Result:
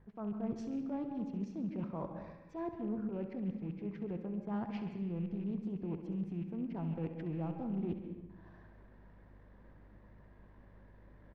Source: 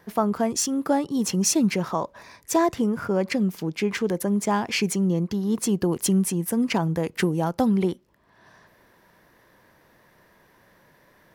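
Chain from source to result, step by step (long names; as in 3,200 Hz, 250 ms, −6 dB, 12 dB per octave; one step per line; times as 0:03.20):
loose part that buzzes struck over −30 dBFS, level −30 dBFS
noise gate with hold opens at −50 dBFS
spectral tilt −2.5 dB per octave
mains hum 50 Hz, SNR 29 dB
reversed playback
downward compressor 6 to 1, threshold −29 dBFS, peak gain reduction 16 dB
reversed playback
transient designer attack −6 dB, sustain −10 dB
high-frequency loss of the air 230 metres
repeating echo 67 ms, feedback 54%, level −11 dB
on a send at −8 dB: convolution reverb RT60 0.85 s, pre-delay 130 ms
on the sum: highs frequency-modulated by the lows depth 0.17 ms
level −7 dB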